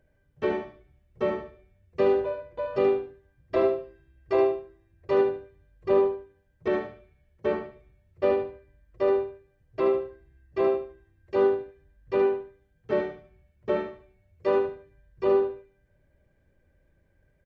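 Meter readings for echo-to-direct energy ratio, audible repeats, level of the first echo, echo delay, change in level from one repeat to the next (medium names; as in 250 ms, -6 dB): -6.5 dB, 3, -7.0 dB, 74 ms, -11.5 dB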